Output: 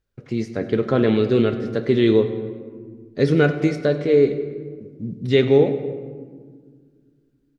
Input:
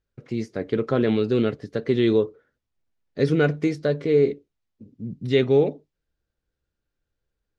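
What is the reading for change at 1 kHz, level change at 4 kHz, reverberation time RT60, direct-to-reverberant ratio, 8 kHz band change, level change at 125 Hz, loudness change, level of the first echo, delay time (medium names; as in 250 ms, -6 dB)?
+3.5 dB, +3.5 dB, 1.7 s, 8.5 dB, no reading, +3.5 dB, +3.0 dB, -17.5 dB, 100 ms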